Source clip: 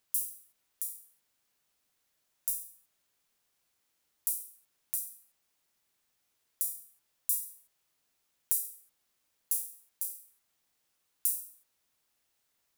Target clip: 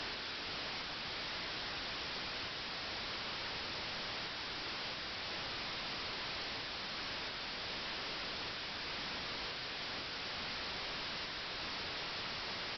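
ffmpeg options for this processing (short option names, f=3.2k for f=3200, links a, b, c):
-af "aeval=exprs='val(0)+0.5*0.0794*sgn(val(0))':c=same,equalizer=f=100:t=o:w=0.67:g=3,equalizer=f=250:t=o:w=0.67:g=-10,equalizer=f=1.6k:t=o:w=0.67:g=7,equalizer=f=4k:t=o:w=0.67:g=5,aresample=11025,aeval=exprs='(mod(35.5*val(0)+1,2)-1)/35.5':c=same,aresample=44100,afftfilt=real='re*gte(hypot(re,im),0.000562)':imag='im*gte(hypot(re,im),0.000562)':win_size=1024:overlap=0.75,volume=-6dB" -ar 48000 -c:a libopus -b:a 96k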